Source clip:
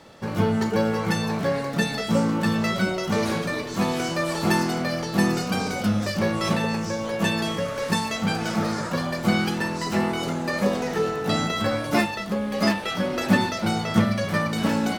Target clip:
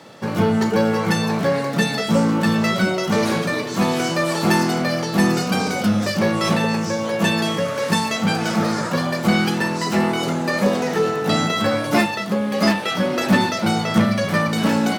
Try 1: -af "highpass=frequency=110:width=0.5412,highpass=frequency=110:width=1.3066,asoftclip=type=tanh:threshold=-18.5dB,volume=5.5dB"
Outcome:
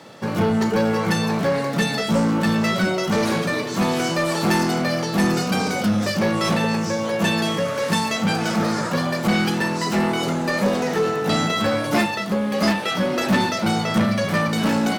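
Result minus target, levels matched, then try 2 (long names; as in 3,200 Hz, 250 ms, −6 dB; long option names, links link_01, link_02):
soft clipping: distortion +7 dB
-af "highpass=frequency=110:width=0.5412,highpass=frequency=110:width=1.3066,asoftclip=type=tanh:threshold=-12.5dB,volume=5.5dB"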